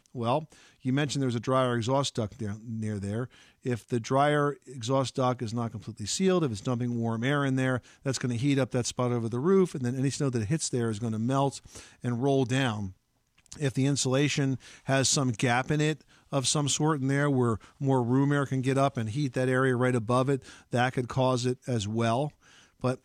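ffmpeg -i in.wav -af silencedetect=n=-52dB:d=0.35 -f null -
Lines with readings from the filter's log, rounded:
silence_start: 12.93
silence_end: 13.39 | silence_duration: 0.46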